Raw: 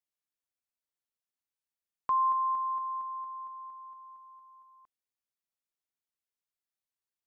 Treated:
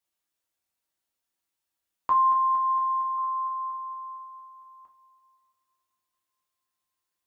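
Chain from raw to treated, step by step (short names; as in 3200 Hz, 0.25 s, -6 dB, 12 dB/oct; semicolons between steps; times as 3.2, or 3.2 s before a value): 3.18–3.72 bell 1300 Hz +8 dB 0.5 oct; reverb, pre-delay 3 ms, DRR -1 dB; gain +5 dB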